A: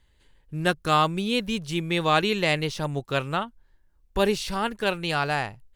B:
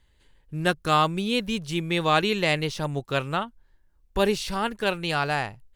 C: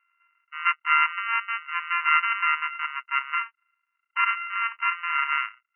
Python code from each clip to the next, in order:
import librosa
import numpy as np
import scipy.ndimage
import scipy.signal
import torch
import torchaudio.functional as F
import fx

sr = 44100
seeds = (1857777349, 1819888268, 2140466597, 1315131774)

y1 = x
y2 = np.r_[np.sort(y1[:len(y1) // 64 * 64].reshape(-1, 64), axis=1).ravel(), y1[len(y1) // 64 * 64:]]
y2 = fx.brickwall_bandpass(y2, sr, low_hz=930.0, high_hz=3000.0)
y2 = y2 * librosa.db_to_amplitude(5.5)